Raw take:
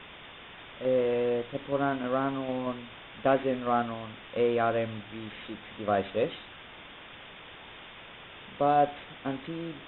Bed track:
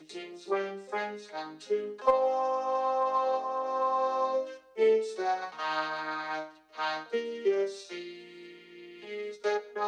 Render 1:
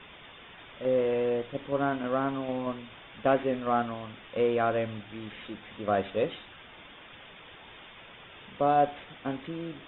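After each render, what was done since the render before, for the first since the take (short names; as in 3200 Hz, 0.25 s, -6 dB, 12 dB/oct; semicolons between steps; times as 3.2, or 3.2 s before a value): denoiser 6 dB, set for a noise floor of -48 dBFS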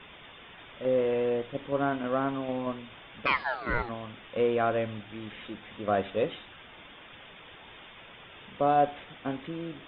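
3.25–3.88 ring modulator 1900 Hz -> 570 Hz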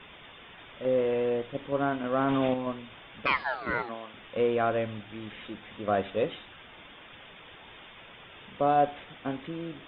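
2.14–2.54 fast leveller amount 100%; 3.7–4.13 HPF 150 Hz -> 390 Hz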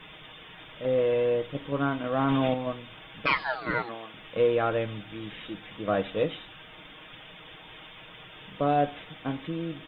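tone controls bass +3 dB, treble +8 dB; comb 6.4 ms, depth 48%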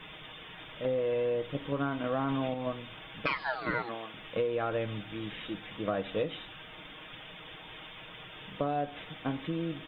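compressor 12:1, threshold -27 dBFS, peak gain reduction 9 dB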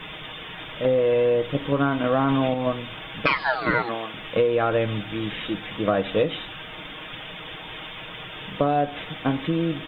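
gain +10 dB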